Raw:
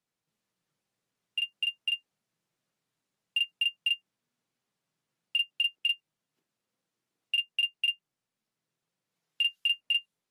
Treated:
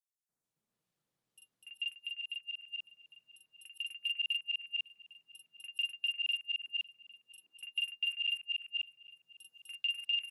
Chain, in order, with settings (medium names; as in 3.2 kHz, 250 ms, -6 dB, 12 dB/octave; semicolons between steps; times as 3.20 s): chunks repeated in reverse 399 ms, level -1.5 dB; on a send: delay 804 ms -22 dB; 1.55–3.51 s: on the sum: compression 2.5:1, threshold -33 dBFS, peak gain reduction 6.5 dB; three bands offset in time highs, lows, mids 290/440 ms, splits 1.9/5.8 kHz; trim -4.5 dB